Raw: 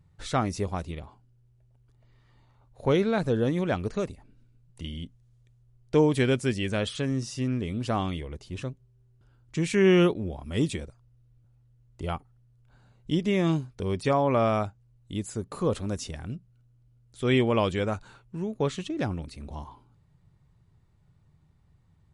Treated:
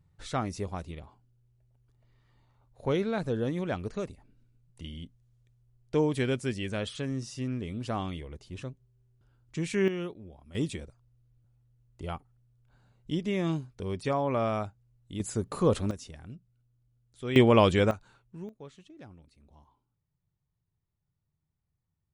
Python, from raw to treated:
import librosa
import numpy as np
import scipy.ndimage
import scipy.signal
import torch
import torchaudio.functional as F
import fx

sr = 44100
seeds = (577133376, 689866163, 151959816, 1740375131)

y = fx.gain(x, sr, db=fx.steps((0.0, -5.0), (9.88, -15.0), (10.55, -5.0), (15.2, 2.0), (15.91, -9.0), (17.36, 4.0), (17.91, -9.0), (18.49, -20.0)))